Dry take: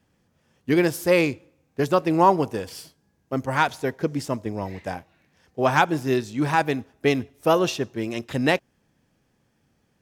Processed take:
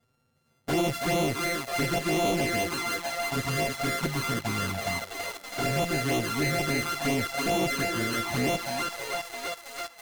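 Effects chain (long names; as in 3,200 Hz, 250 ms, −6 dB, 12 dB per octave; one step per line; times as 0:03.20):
samples sorted by size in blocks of 64 samples
on a send: feedback echo with a high-pass in the loop 327 ms, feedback 72%, high-pass 320 Hz, level −6.5 dB
on the sum: dynamic equaliser 740 Hz, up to −3 dB, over −32 dBFS, Q 4.3
tube saturation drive 23 dB, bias 0.35
flanger swept by the level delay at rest 8.2 ms, full sweep at −23 dBFS
in parallel at −10.5 dB: log-companded quantiser 2 bits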